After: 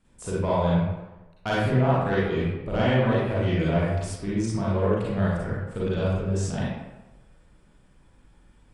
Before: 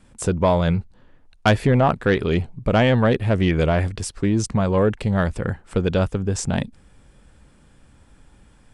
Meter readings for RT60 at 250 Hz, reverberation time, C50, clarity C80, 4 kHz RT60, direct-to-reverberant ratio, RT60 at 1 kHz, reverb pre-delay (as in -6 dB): 1.0 s, 1.1 s, -4.0 dB, 1.5 dB, 0.65 s, -8.0 dB, 1.1 s, 34 ms